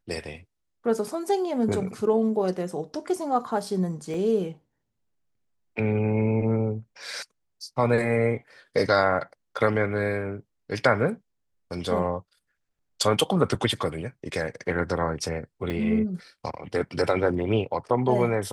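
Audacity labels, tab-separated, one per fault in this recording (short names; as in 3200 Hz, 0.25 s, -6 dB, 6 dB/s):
4.140000	4.140000	gap 2.2 ms
15.700000	15.700000	gap 2.5 ms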